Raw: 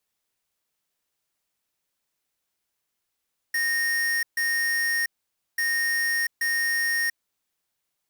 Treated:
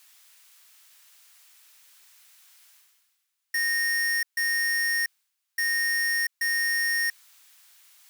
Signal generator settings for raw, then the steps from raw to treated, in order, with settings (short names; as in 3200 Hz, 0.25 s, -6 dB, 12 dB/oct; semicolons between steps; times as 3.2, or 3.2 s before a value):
beep pattern square 1850 Hz, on 0.69 s, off 0.14 s, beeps 2, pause 0.52 s, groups 2, -24.5 dBFS
HPF 1300 Hz 12 dB/oct; reverse; upward compressor, threshold -36 dBFS; reverse